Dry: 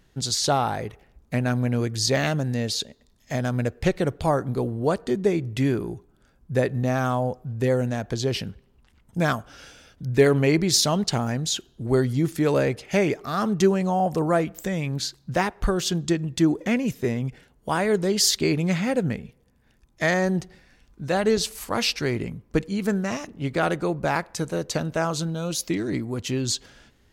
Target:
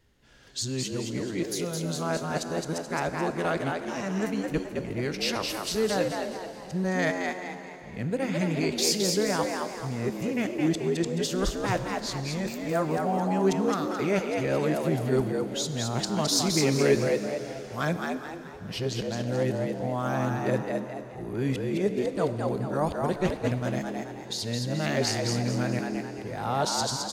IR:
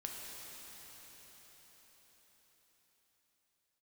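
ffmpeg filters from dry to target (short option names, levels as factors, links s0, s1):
-filter_complex "[0:a]areverse,asplit=6[s0][s1][s2][s3][s4][s5];[s1]adelay=215,afreqshift=84,volume=0.631[s6];[s2]adelay=430,afreqshift=168,volume=0.245[s7];[s3]adelay=645,afreqshift=252,volume=0.0955[s8];[s4]adelay=860,afreqshift=336,volume=0.0376[s9];[s5]adelay=1075,afreqshift=420,volume=0.0146[s10];[s0][s6][s7][s8][s9][s10]amix=inputs=6:normalize=0,asplit=2[s11][s12];[1:a]atrim=start_sample=2205,asetrate=70560,aresample=44100[s13];[s12][s13]afir=irnorm=-1:irlink=0,volume=0.841[s14];[s11][s14]amix=inputs=2:normalize=0,volume=0.398"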